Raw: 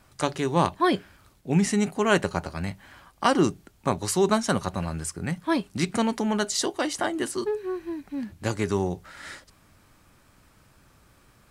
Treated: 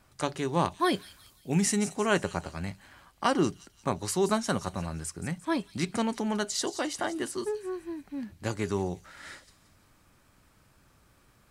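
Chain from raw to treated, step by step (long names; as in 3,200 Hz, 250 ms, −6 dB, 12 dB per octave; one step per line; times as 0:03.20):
0:00.79–0:01.77: high-shelf EQ 5,200 Hz +11.5 dB
on a send: delay with a high-pass on its return 174 ms, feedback 44%, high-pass 4,100 Hz, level −10.5 dB
on the sum: level −4.5 dB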